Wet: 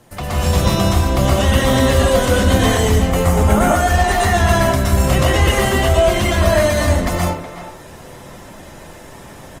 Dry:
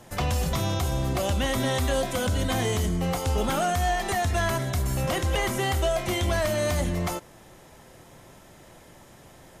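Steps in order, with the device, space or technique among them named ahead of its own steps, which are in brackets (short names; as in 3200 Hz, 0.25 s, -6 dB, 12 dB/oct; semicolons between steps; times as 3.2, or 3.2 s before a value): 3.09–3.76 band shelf 3900 Hz -8 dB 1.3 oct; speakerphone in a meeting room (reverb RT60 0.50 s, pre-delay 0.114 s, DRR -4.5 dB; speakerphone echo 0.37 s, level -12 dB; AGC gain up to 6.5 dB; gain +1 dB; Opus 24 kbps 48000 Hz)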